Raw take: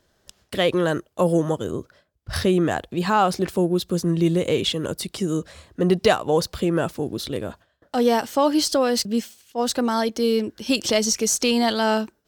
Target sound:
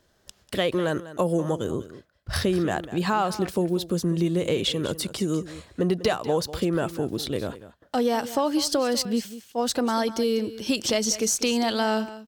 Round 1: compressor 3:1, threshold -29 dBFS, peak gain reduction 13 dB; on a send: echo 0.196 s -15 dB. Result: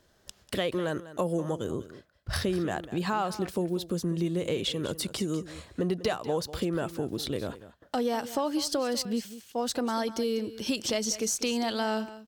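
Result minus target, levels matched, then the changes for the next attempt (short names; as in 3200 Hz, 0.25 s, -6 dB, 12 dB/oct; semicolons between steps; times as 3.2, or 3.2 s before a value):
compressor: peak gain reduction +5.5 dB
change: compressor 3:1, threshold -21 dBFS, peak gain reduction 7.5 dB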